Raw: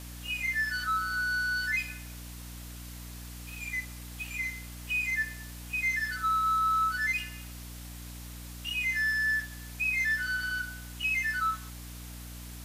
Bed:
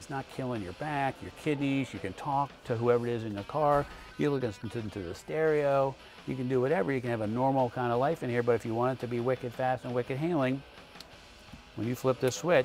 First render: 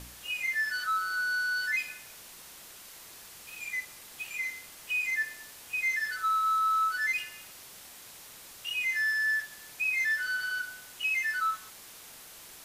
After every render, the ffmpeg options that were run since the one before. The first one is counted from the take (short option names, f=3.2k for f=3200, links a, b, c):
-af "bandreject=f=60:t=h:w=4,bandreject=f=120:t=h:w=4,bandreject=f=180:t=h:w=4,bandreject=f=240:t=h:w=4,bandreject=f=300:t=h:w=4"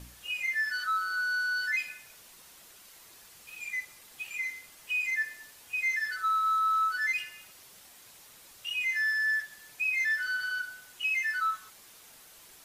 -af "afftdn=nr=6:nf=-50"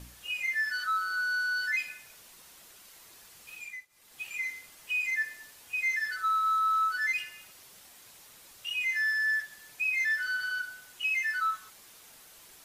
-filter_complex "[0:a]asplit=3[a][b][c];[a]atrim=end=3.87,asetpts=PTS-STARTPTS,afade=t=out:st=3.53:d=0.34:silence=0.0944061[d];[b]atrim=start=3.87:end=3.89,asetpts=PTS-STARTPTS,volume=-20.5dB[e];[c]atrim=start=3.89,asetpts=PTS-STARTPTS,afade=t=in:d=0.34:silence=0.0944061[f];[d][e][f]concat=n=3:v=0:a=1"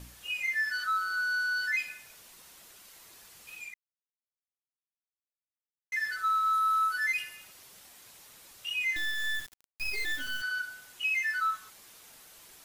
-filter_complex "[0:a]asettb=1/sr,asplit=3[a][b][c];[a]atrim=end=6.534[d];[b]atrim=start=6.53:end=7.36,asetpts=PTS-STARTPTS,afade=t=in:d=0.004:c=qsin,afade=t=out:st=0.826:d=0.004:c=qsin,equalizer=f=11k:w=3.8:g=9[e];[c]atrim=start=7.356[f];[d][e]acrossfade=d=0.004:c1=hsin:c2=qsin[g];[g][f]acrossfade=d=0.004:c1=qsin:c2=hsin,asettb=1/sr,asplit=3[h][i][j];[h]atrim=end=8.964[k];[i]atrim=start=8.96:end=10.42,asetpts=PTS-STARTPTS,afade=t=in:d=0.004:c=qsin,afade=t=out:st=1.456:d=0.004:c=qsin,acrusher=bits=4:dc=4:mix=0:aa=0.000001[l];[j]atrim=start=10.416[m];[k][l]acrossfade=d=0.004:c1=hsin:c2=qsin[n];[n][m]acrossfade=d=0.004:c1=qsin:c2=hsin,asplit=3[o][p][q];[o]atrim=end=3.74,asetpts=PTS-STARTPTS,afade=t=out:st=3.736:d=0.004:c=hsin[r];[p]atrim=start=3.74:end=5.92,asetpts=PTS-STARTPTS,volume=0[s];[q]atrim=start=5.92,asetpts=PTS-STARTPTS,afade=t=in:d=0.004:c=hsin[t];[r][s][t]concat=n=3:v=0:a=1"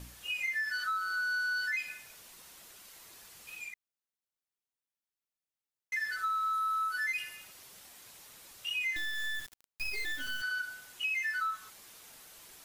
-af "acompressor=threshold=-31dB:ratio=4"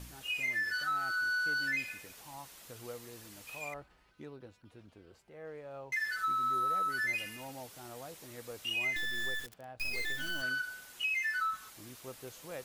-filter_complex "[1:a]volume=-19.5dB[a];[0:a][a]amix=inputs=2:normalize=0"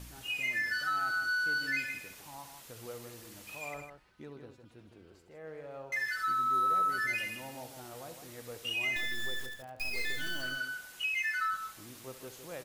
-af "aecho=1:1:69|159:0.251|0.398"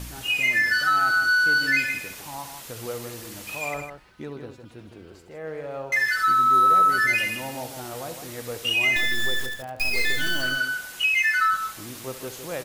-af "volume=11.5dB"